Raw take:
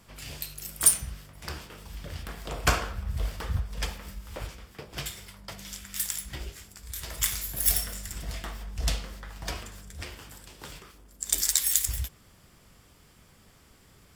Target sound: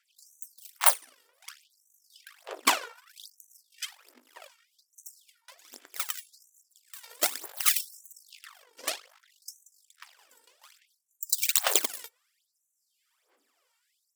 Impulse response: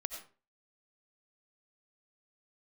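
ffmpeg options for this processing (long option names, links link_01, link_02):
-af "aeval=exprs='0.841*(cos(1*acos(clip(val(0)/0.841,-1,1)))-cos(1*PI/2))+0.0841*(cos(7*acos(clip(val(0)/0.841,-1,1)))-cos(7*PI/2))+0.335*(cos(8*acos(clip(val(0)/0.841,-1,1)))-cos(8*PI/2))':channel_layout=same,aphaser=in_gain=1:out_gain=1:delay=2.2:decay=0.73:speed=1.2:type=sinusoidal,afftfilt=real='re*gte(b*sr/1024,240*pow(5900/240,0.5+0.5*sin(2*PI*0.65*pts/sr)))':imag='im*gte(b*sr/1024,240*pow(5900/240,0.5+0.5*sin(2*PI*0.65*pts/sr)))':win_size=1024:overlap=0.75,volume=-5.5dB"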